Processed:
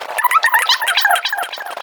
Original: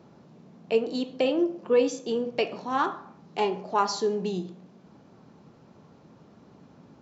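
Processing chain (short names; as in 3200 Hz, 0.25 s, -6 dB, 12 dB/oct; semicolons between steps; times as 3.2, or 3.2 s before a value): reverb removal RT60 1.7 s; gate -53 dBFS, range -22 dB; low shelf 90 Hz -9.5 dB; compressor 12:1, threshold -42 dBFS, peak gain reduction 25 dB; wide varispeed 3.84×; wow and flutter 27 cents; feedback echo 0.278 s, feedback 39%, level -9 dB; maximiser +36 dB; gain -1 dB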